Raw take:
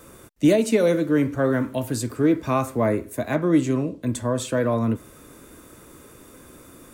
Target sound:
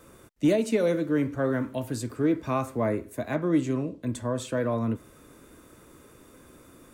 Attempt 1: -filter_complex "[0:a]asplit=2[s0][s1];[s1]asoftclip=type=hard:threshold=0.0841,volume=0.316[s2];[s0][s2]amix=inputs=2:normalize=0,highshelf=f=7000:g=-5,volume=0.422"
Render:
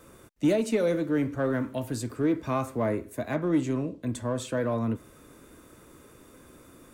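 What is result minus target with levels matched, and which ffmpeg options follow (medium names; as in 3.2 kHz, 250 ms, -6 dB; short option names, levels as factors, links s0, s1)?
hard clipper: distortion +24 dB
-filter_complex "[0:a]asplit=2[s0][s1];[s1]asoftclip=type=hard:threshold=0.316,volume=0.316[s2];[s0][s2]amix=inputs=2:normalize=0,highshelf=f=7000:g=-5,volume=0.422"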